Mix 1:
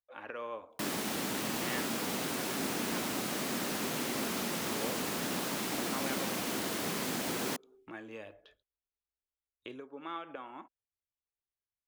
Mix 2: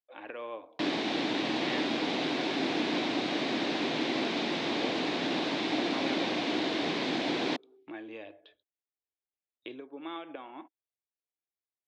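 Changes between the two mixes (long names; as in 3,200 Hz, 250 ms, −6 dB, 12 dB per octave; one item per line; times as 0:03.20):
background +3.5 dB
master: add loudspeaker in its box 140–4,500 Hz, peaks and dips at 200 Hz −6 dB, 310 Hz +8 dB, 710 Hz +4 dB, 1,300 Hz −6 dB, 2,300 Hz +3 dB, 3,700 Hz +6 dB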